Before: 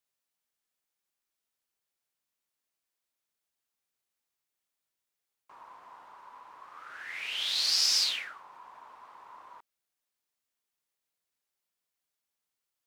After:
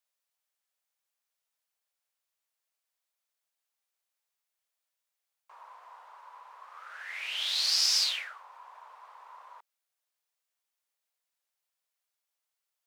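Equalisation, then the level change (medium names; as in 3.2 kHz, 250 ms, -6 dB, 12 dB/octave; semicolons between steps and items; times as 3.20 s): steep high-pass 480 Hz 36 dB/octave; 0.0 dB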